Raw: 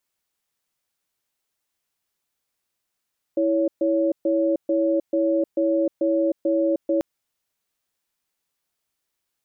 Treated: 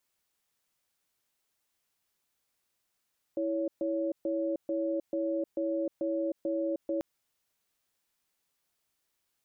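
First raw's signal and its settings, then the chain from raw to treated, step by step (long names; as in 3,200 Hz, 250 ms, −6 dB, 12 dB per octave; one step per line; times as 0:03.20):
tone pair in a cadence 328 Hz, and 559 Hz, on 0.31 s, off 0.13 s, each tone −20.5 dBFS 3.64 s
brickwall limiter −25 dBFS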